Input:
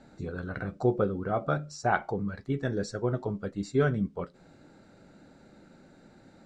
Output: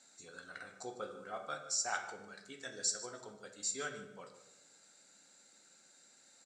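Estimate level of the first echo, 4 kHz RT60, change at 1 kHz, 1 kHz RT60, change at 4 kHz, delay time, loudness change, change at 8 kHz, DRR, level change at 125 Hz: -15.5 dB, 0.60 s, -11.5 dB, 0.80 s, +5.0 dB, 0.15 s, -9.5 dB, +12.5 dB, 4.0 dB, -30.0 dB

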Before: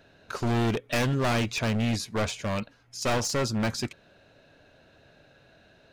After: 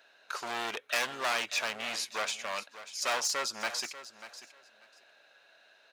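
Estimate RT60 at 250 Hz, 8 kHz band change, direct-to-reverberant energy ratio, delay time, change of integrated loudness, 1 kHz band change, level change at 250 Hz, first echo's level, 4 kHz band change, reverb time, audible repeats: none, 0.0 dB, none, 0.591 s, -5.0 dB, -2.5 dB, -21.5 dB, -14.0 dB, 0.0 dB, none, 2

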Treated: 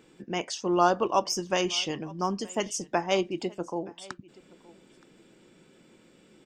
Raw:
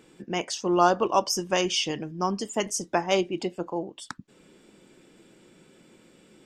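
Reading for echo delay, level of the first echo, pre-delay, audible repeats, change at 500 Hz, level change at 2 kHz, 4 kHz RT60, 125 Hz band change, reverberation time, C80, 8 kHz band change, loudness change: 0.922 s, -23.0 dB, none, 1, -2.0 dB, -2.0 dB, none, -2.0 dB, none, none, -3.0 dB, -2.0 dB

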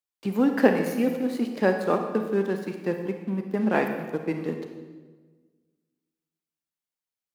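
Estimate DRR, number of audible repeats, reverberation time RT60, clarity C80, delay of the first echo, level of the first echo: 5.0 dB, none, 1.4 s, 8.0 dB, none, none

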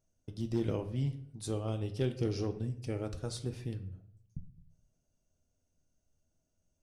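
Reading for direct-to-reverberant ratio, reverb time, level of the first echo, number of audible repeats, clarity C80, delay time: 7.5 dB, 0.70 s, none, none, 16.5 dB, none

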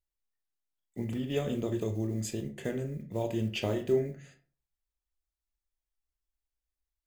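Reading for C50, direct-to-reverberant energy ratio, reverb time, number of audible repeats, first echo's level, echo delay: 12.5 dB, 5.5 dB, 0.40 s, none, none, none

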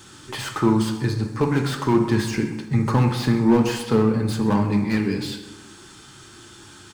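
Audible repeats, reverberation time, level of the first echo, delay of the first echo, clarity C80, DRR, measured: 1, 1.2 s, -16.0 dB, 0.129 s, 8.5 dB, 3.0 dB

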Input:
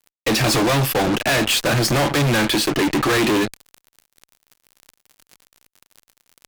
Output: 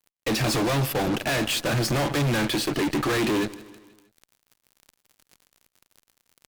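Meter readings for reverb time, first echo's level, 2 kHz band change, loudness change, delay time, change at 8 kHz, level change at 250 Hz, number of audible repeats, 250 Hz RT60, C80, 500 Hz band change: none, -19.0 dB, -7.5 dB, -6.5 dB, 0.159 s, -7.5 dB, -5.5 dB, 3, none, none, -6.0 dB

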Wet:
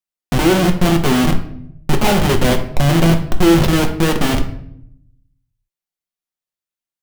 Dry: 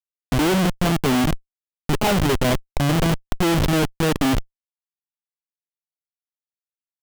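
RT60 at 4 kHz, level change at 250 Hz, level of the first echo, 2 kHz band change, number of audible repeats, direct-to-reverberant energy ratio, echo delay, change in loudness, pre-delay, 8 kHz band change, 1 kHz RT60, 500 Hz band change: 0.50 s, +5.5 dB, none, +4.5 dB, none, 3.5 dB, none, +5.5 dB, 5 ms, +4.0 dB, 0.60 s, +5.5 dB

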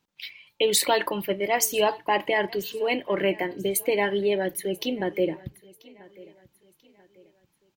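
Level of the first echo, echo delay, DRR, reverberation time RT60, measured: -22.5 dB, 0.988 s, none, none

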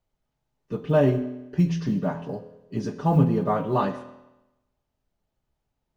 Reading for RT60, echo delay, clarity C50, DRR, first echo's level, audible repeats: 0.95 s, none, 11.5 dB, 9.0 dB, none, none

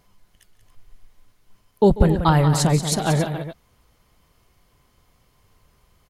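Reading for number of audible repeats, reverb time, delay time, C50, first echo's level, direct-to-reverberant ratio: 3, none, 0.142 s, none, -18.0 dB, none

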